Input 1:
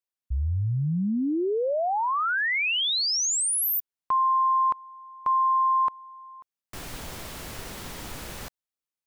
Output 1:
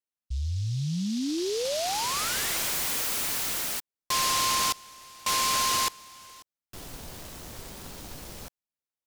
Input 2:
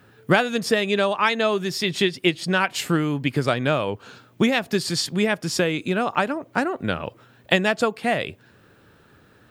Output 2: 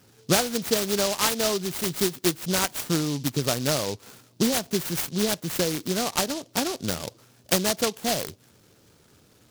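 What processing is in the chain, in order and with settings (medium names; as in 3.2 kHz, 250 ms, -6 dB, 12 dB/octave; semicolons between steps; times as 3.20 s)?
delay time shaken by noise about 4.5 kHz, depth 0.15 ms; trim -3.5 dB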